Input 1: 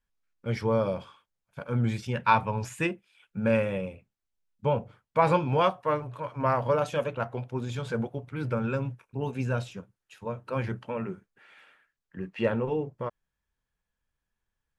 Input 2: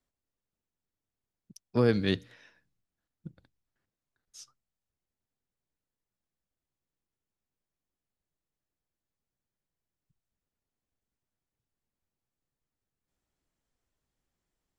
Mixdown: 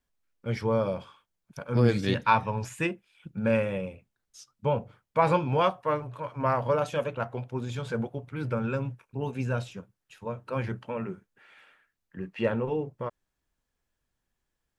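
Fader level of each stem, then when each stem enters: -0.5 dB, -0.5 dB; 0.00 s, 0.00 s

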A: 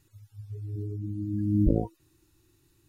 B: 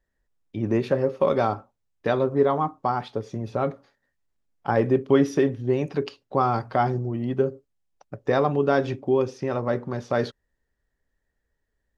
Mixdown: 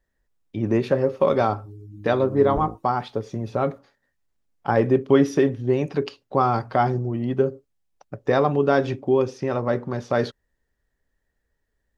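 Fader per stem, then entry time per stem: -7.0 dB, +2.0 dB; 0.90 s, 0.00 s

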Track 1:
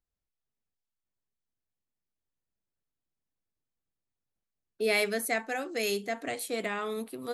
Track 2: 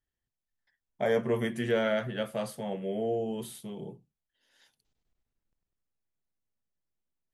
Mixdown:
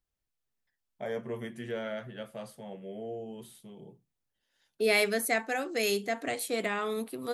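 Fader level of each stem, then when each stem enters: +1.5 dB, -8.5 dB; 0.00 s, 0.00 s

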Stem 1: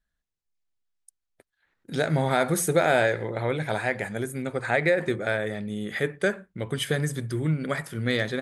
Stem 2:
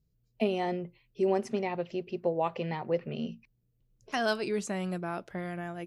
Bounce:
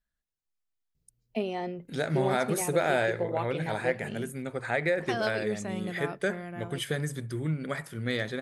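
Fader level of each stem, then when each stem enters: -5.0 dB, -2.5 dB; 0.00 s, 0.95 s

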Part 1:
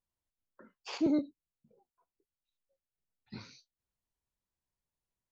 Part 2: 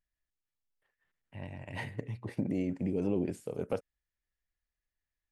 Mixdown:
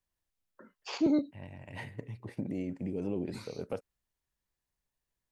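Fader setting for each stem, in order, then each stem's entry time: +2.0 dB, -3.5 dB; 0.00 s, 0.00 s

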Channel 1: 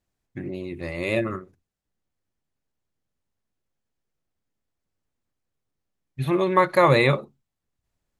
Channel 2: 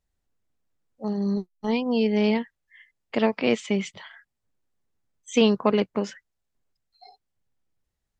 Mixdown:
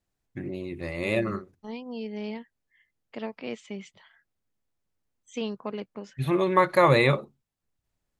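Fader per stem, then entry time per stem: -2.0 dB, -13.0 dB; 0.00 s, 0.00 s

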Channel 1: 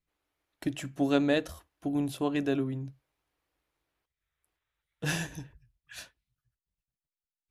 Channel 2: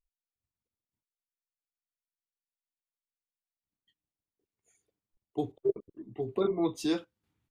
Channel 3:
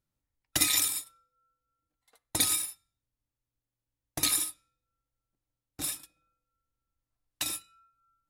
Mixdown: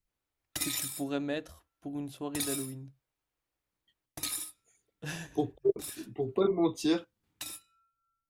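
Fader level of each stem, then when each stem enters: -8.0 dB, +1.5 dB, -8.5 dB; 0.00 s, 0.00 s, 0.00 s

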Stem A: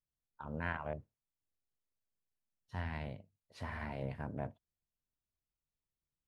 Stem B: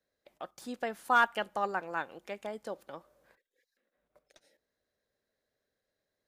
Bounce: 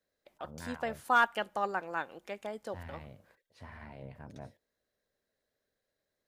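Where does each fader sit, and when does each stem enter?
-6.5 dB, -0.5 dB; 0.00 s, 0.00 s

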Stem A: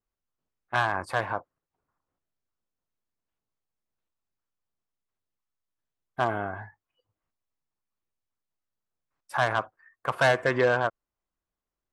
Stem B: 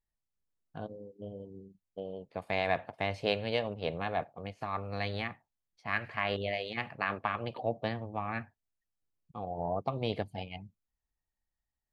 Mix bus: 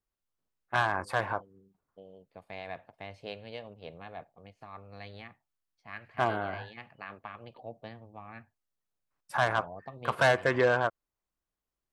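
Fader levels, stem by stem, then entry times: -2.0 dB, -11.0 dB; 0.00 s, 0.00 s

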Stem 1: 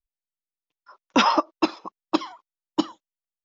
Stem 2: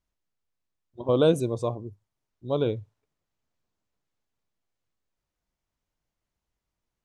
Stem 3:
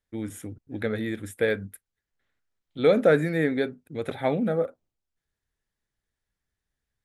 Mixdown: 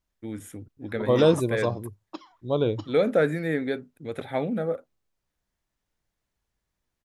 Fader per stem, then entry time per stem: -17.0 dB, +1.5 dB, -2.5 dB; 0.00 s, 0.00 s, 0.10 s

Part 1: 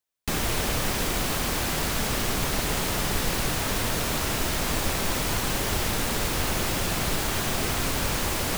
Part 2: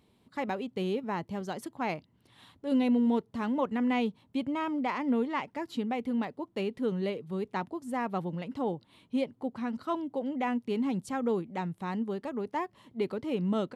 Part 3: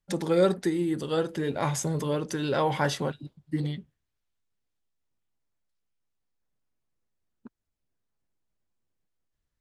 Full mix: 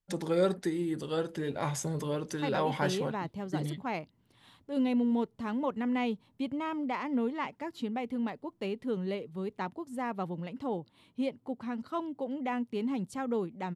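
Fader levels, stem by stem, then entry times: mute, -2.5 dB, -5.0 dB; mute, 2.05 s, 0.00 s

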